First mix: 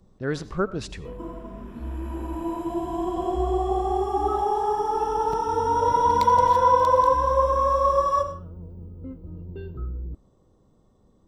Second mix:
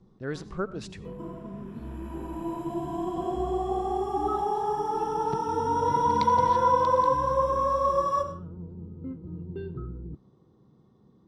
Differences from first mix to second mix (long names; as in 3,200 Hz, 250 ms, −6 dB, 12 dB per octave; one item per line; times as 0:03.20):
speech −6.0 dB
first sound: add loudspeaker in its box 100–5,000 Hz, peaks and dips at 140 Hz +8 dB, 200 Hz +4 dB, 360 Hz +4 dB, 590 Hz −9 dB, 2,800 Hz −4 dB
second sound −4.0 dB